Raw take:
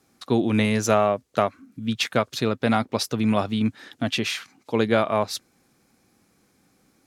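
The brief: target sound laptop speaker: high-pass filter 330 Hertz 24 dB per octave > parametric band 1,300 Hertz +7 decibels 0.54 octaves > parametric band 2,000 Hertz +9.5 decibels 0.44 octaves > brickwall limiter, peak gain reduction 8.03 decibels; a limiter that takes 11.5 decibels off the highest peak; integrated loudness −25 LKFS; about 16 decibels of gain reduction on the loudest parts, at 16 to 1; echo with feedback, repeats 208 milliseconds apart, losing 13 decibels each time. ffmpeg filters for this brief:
ffmpeg -i in.wav -af "acompressor=threshold=-31dB:ratio=16,alimiter=level_in=1.5dB:limit=-24dB:level=0:latency=1,volume=-1.5dB,highpass=frequency=330:width=0.5412,highpass=frequency=330:width=1.3066,equalizer=frequency=1300:width_type=o:width=0.54:gain=7,equalizer=frequency=2000:width_type=o:width=0.44:gain=9.5,aecho=1:1:208|416|624:0.224|0.0493|0.0108,volume=16dB,alimiter=limit=-14dB:level=0:latency=1" out.wav

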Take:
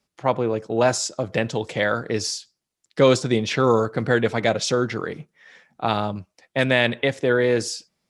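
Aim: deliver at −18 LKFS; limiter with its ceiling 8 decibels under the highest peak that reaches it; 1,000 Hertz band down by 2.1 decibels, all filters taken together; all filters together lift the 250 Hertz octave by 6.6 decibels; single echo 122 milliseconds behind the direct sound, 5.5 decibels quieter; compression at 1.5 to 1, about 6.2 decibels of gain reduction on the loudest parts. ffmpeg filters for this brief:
ffmpeg -i in.wav -af "equalizer=frequency=250:width_type=o:gain=8,equalizer=frequency=1000:width_type=o:gain=-3.5,acompressor=threshold=-26dB:ratio=1.5,alimiter=limit=-16.5dB:level=0:latency=1,aecho=1:1:122:0.531,volume=9dB" out.wav

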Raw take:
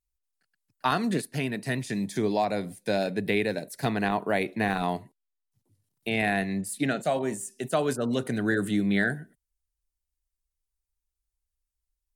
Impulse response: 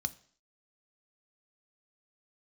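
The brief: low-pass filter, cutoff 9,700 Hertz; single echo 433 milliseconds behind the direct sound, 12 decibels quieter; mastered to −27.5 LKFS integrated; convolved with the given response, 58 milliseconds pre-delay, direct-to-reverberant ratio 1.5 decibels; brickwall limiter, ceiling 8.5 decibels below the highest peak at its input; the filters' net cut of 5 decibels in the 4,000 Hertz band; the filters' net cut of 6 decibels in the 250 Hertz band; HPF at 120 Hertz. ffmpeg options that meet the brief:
-filter_complex "[0:a]highpass=120,lowpass=9700,equalizer=frequency=250:width_type=o:gain=-7.5,equalizer=frequency=4000:width_type=o:gain=-6,alimiter=limit=-20.5dB:level=0:latency=1,aecho=1:1:433:0.251,asplit=2[link_01][link_02];[1:a]atrim=start_sample=2205,adelay=58[link_03];[link_02][link_03]afir=irnorm=-1:irlink=0,volume=-2.5dB[link_04];[link_01][link_04]amix=inputs=2:normalize=0,volume=3dB"

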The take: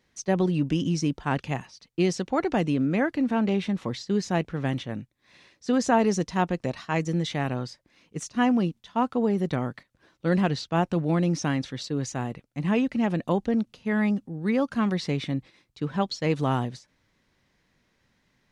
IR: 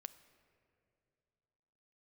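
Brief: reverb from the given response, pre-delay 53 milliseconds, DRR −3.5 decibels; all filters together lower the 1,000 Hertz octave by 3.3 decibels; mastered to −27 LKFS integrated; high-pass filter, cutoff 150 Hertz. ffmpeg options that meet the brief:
-filter_complex "[0:a]highpass=150,equalizer=frequency=1000:width_type=o:gain=-4.5,asplit=2[link_01][link_02];[1:a]atrim=start_sample=2205,adelay=53[link_03];[link_02][link_03]afir=irnorm=-1:irlink=0,volume=9dB[link_04];[link_01][link_04]amix=inputs=2:normalize=0,volume=-4.5dB"

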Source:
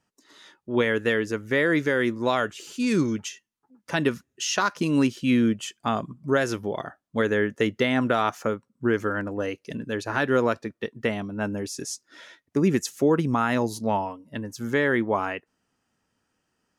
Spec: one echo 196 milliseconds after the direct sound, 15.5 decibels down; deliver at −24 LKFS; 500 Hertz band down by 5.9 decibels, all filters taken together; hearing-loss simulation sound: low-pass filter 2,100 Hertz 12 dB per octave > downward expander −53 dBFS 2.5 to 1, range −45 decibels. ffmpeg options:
ffmpeg -i in.wav -af "lowpass=2100,equalizer=frequency=500:width_type=o:gain=-7.5,aecho=1:1:196:0.168,agate=range=-45dB:threshold=-53dB:ratio=2.5,volume=4.5dB" out.wav

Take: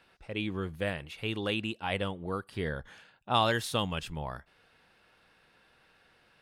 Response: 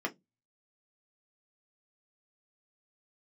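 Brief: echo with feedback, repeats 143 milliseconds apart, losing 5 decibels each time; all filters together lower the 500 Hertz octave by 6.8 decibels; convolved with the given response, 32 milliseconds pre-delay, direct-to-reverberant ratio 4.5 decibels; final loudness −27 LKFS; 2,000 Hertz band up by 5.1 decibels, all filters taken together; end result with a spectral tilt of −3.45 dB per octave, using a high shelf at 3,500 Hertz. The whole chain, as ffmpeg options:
-filter_complex "[0:a]equalizer=frequency=500:width_type=o:gain=-9,equalizer=frequency=2000:width_type=o:gain=5,highshelf=frequency=3500:gain=7,aecho=1:1:143|286|429|572|715|858|1001:0.562|0.315|0.176|0.0988|0.0553|0.031|0.0173,asplit=2[link_01][link_02];[1:a]atrim=start_sample=2205,adelay=32[link_03];[link_02][link_03]afir=irnorm=-1:irlink=0,volume=-9.5dB[link_04];[link_01][link_04]amix=inputs=2:normalize=0,volume=1.5dB"

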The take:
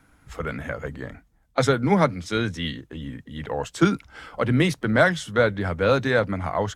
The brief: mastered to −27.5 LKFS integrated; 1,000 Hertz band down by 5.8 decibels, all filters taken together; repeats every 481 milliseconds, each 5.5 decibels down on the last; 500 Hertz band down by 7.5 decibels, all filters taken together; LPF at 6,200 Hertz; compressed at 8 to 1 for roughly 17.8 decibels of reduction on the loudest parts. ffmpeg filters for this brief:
ffmpeg -i in.wav -af "lowpass=6200,equalizer=frequency=500:width_type=o:gain=-7.5,equalizer=frequency=1000:width_type=o:gain=-6.5,acompressor=threshold=-35dB:ratio=8,aecho=1:1:481|962|1443|1924|2405|2886|3367:0.531|0.281|0.149|0.079|0.0419|0.0222|0.0118,volume=11dB" out.wav

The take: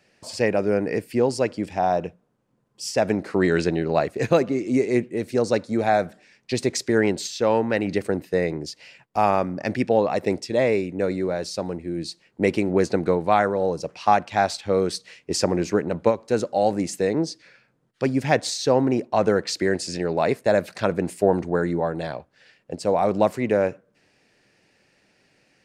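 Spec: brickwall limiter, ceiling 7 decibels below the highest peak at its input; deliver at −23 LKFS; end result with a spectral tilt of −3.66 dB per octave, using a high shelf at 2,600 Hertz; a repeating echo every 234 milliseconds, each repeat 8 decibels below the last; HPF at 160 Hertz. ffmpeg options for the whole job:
ffmpeg -i in.wav -af "highpass=160,highshelf=frequency=2600:gain=-8.5,alimiter=limit=-12dB:level=0:latency=1,aecho=1:1:234|468|702|936|1170:0.398|0.159|0.0637|0.0255|0.0102,volume=2dB" out.wav

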